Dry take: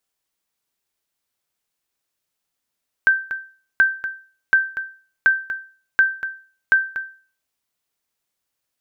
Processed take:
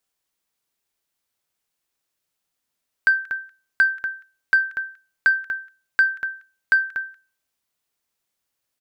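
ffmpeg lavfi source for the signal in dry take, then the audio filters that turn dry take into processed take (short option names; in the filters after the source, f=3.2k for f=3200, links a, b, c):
-f lavfi -i "aevalsrc='0.447*(sin(2*PI*1560*mod(t,0.73))*exp(-6.91*mod(t,0.73)/0.4)+0.266*sin(2*PI*1560*max(mod(t,0.73)-0.24,0))*exp(-6.91*max(mod(t,0.73)-0.24,0)/0.4))':d=4.38:s=44100"
-filter_complex "[0:a]acrossover=split=1400[a][b];[a]asoftclip=type=tanh:threshold=-21dB[c];[b]aecho=1:1:183:0.112[d];[c][d]amix=inputs=2:normalize=0"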